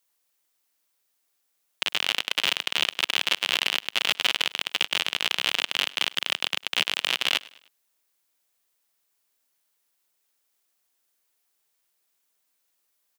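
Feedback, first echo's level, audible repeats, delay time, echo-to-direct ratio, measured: 45%, −22.0 dB, 2, 102 ms, −21.0 dB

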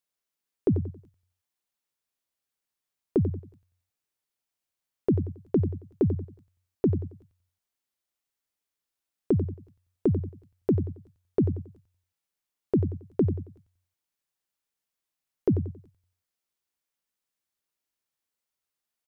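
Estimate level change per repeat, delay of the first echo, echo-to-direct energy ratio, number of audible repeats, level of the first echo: −9.5 dB, 91 ms, −9.5 dB, 3, −10.0 dB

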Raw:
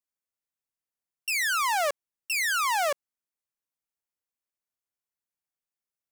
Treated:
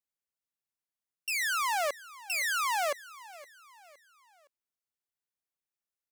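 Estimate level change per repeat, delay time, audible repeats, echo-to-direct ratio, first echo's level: −7.5 dB, 515 ms, 3, −18.0 dB, −19.0 dB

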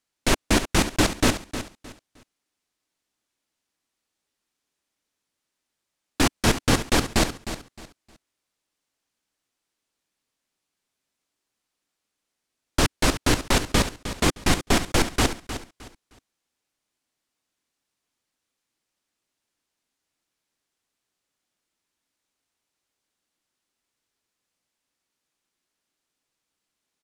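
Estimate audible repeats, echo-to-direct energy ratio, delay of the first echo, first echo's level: 3, −11.0 dB, 309 ms, −11.5 dB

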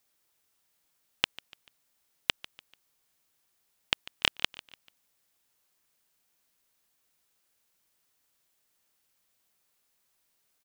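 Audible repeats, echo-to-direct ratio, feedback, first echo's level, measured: 3, −18.0 dB, 42%, −19.0 dB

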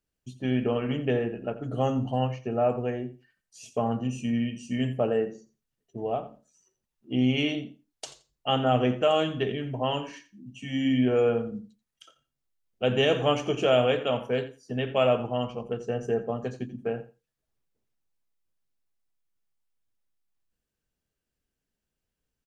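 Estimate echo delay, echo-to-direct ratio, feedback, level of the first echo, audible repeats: 86 ms, −15.5 dB, 15%, −15.5 dB, 2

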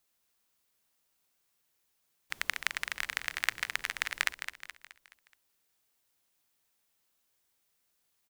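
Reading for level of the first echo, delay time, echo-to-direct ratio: −9.5 dB, 212 ms, −8.5 dB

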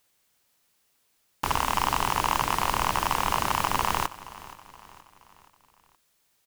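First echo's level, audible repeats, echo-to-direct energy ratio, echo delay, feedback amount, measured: −18.0 dB, 3, −17.0 dB, 473 ms, 48%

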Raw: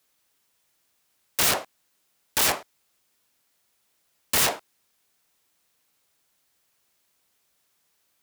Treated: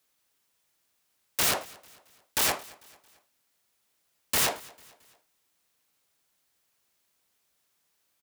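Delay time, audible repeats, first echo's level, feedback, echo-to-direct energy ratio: 223 ms, 2, −23.0 dB, 46%, −22.0 dB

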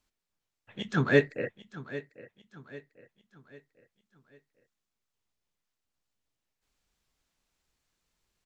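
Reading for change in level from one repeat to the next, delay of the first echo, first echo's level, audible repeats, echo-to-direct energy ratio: −7.5 dB, 796 ms, −16.0 dB, 3, −15.0 dB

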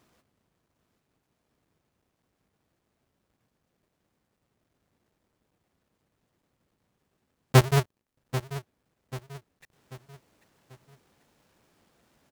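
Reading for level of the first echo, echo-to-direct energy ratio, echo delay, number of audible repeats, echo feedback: −13.0 dB, −12.0 dB, 789 ms, 3, 42%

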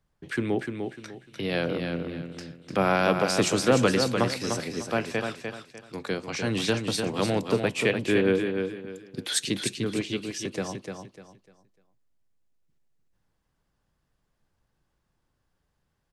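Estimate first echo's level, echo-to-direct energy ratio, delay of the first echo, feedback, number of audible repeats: −6.0 dB, −5.5 dB, 299 ms, 29%, 3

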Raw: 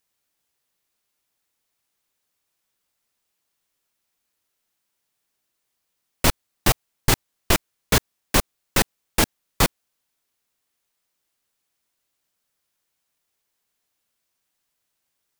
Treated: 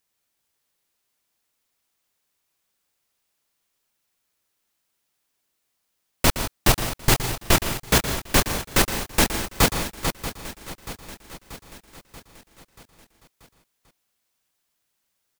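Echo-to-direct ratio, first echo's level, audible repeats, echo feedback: −3.5 dB, −12.0 dB, 17, repeats not evenly spaced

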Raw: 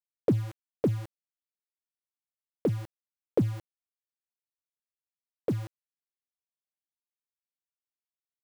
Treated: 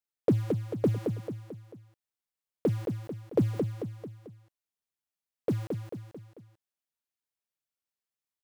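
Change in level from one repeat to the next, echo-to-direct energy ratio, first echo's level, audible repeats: −6.0 dB, −4.5 dB, −5.5 dB, 4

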